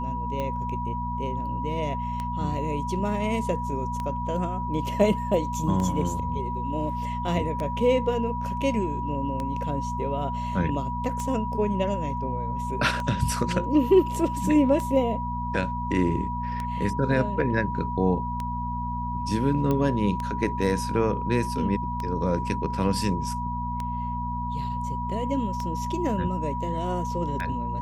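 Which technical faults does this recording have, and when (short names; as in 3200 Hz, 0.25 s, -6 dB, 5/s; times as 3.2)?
hum 60 Hz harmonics 4 -32 dBFS
tick 33 1/3 rpm -18 dBFS
tone 970 Hz -30 dBFS
19.71 pop -14 dBFS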